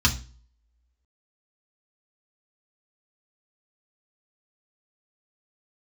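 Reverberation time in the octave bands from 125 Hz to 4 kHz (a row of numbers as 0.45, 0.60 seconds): 0.55, 0.45, 0.40, 0.35, 0.35, 0.35 seconds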